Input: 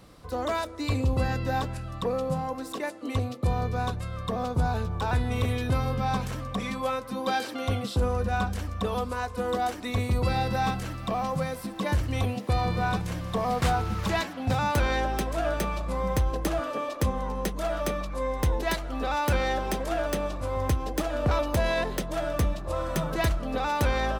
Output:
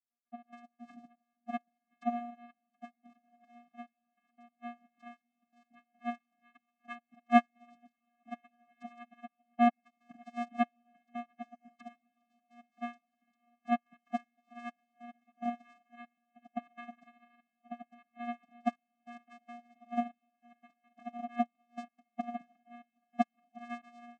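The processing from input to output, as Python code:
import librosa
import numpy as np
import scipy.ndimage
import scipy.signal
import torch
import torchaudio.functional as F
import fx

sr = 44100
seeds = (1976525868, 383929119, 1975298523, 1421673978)

y = fx.sine_speech(x, sr)
y = fx.low_shelf(y, sr, hz=370.0, db=-8.5)
y = fx.hum_notches(y, sr, base_hz=60, count=5)
y = fx.step_gate(y, sr, bpm=144, pattern='.x.x.xxxxxx..', floor_db=-12.0, edge_ms=4.5)
y = fx.vocoder(y, sr, bands=4, carrier='square', carrier_hz=238.0)
y = fx.echo_diffused(y, sr, ms=1393, feedback_pct=40, wet_db=-12.5)
y = fx.upward_expand(y, sr, threshold_db=-42.0, expansion=2.5)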